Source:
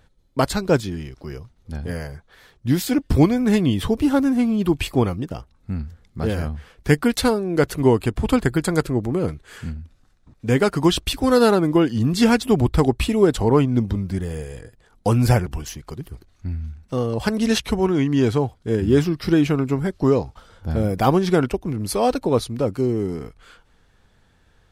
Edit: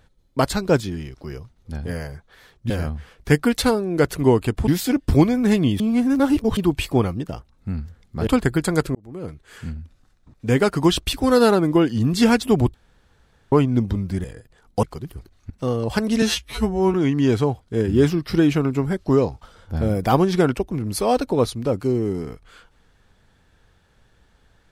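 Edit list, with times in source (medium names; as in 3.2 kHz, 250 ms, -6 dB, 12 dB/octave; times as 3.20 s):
3.82–4.59 s: reverse
6.29–8.27 s: move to 2.70 s
8.95–9.77 s: fade in
12.74–13.52 s: room tone
14.24–14.52 s: delete
15.11–15.79 s: delete
16.46–16.80 s: delete
17.52–17.88 s: stretch 2×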